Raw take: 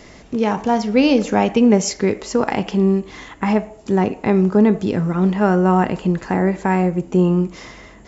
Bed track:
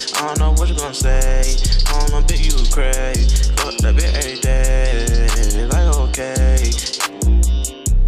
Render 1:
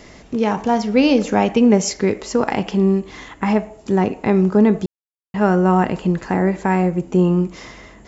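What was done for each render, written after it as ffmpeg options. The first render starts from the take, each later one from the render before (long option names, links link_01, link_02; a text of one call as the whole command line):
ffmpeg -i in.wav -filter_complex "[0:a]asplit=3[link_01][link_02][link_03];[link_01]atrim=end=4.86,asetpts=PTS-STARTPTS,afade=type=out:start_time=4.856:duration=0.004:curve=hsin[link_04];[link_02]atrim=start=4.86:end=5.34,asetpts=PTS-STARTPTS,volume=0[link_05];[link_03]atrim=start=5.34,asetpts=PTS-STARTPTS,afade=type=in:duration=0.004:curve=hsin[link_06];[link_04][link_05][link_06]concat=n=3:v=0:a=1" out.wav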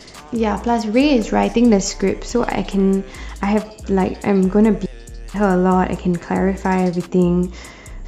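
ffmpeg -i in.wav -i bed.wav -filter_complex "[1:a]volume=-20dB[link_01];[0:a][link_01]amix=inputs=2:normalize=0" out.wav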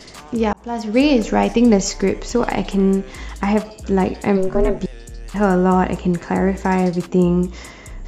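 ffmpeg -i in.wav -filter_complex "[0:a]asplit=3[link_01][link_02][link_03];[link_01]afade=type=out:start_time=4.36:duration=0.02[link_04];[link_02]aeval=exprs='val(0)*sin(2*PI*190*n/s)':channel_layout=same,afade=type=in:start_time=4.36:duration=0.02,afade=type=out:start_time=4.79:duration=0.02[link_05];[link_03]afade=type=in:start_time=4.79:duration=0.02[link_06];[link_04][link_05][link_06]amix=inputs=3:normalize=0,asplit=2[link_07][link_08];[link_07]atrim=end=0.53,asetpts=PTS-STARTPTS,afade=type=out:start_time=0.526:duration=0.004:curve=hsin[link_09];[link_08]atrim=start=0.53,asetpts=PTS-STARTPTS,afade=type=in:duration=0.47[link_10];[link_09][link_10]concat=n=2:v=0:a=1" out.wav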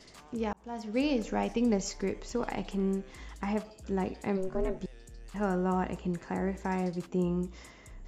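ffmpeg -i in.wav -af "volume=-14.5dB" out.wav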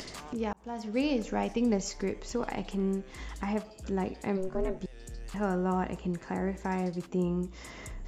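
ffmpeg -i in.wav -af "acompressor=mode=upward:threshold=-33dB:ratio=2.5" out.wav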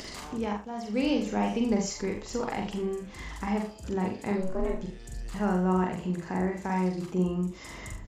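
ffmpeg -i in.wav -filter_complex "[0:a]asplit=2[link_01][link_02];[link_02]adelay=44,volume=-3dB[link_03];[link_01][link_03]amix=inputs=2:normalize=0,aecho=1:1:43|73:0.398|0.251" out.wav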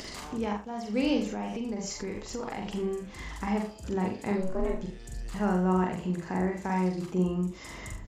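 ffmpeg -i in.wav -filter_complex "[0:a]asettb=1/sr,asplit=3[link_01][link_02][link_03];[link_01]atrim=end=1.274[link_04];[link_02]atrim=start=1.27:end=2.68,asetpts=PTS-STARTPTS,afade=type=in:duration=0.004:curve=qsin,afade=type=out:start_time=1.406:duration=0.004:curve=qsin,acompressor=threshold=-31dB:ratio=4:attack=3.2:release=140:knee=1:detection=peak[link_05];[link_03]atrim=start=2.676[link_06];[link_04][link_05]acrossfade=duration=0.004:curve1=hsin:curve2=qsin[link_07];[link_07][link_06]acrossfade=duration=0.004:curve1=qsin:curve2=hsin" out.wav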